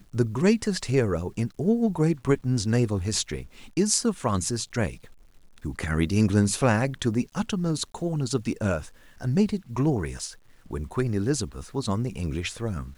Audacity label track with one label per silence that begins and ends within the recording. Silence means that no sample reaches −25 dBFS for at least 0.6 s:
4.880000	5.650000	silence